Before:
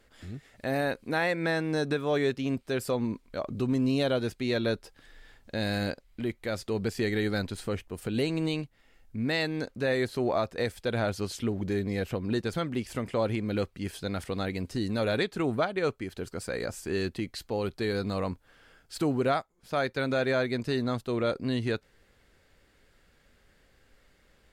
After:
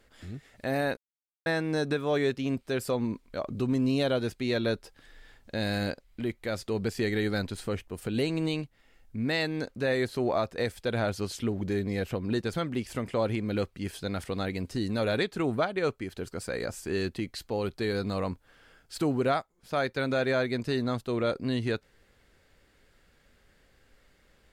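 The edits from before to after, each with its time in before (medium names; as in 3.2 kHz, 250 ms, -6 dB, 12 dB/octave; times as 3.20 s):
0.97–1.46 s: mute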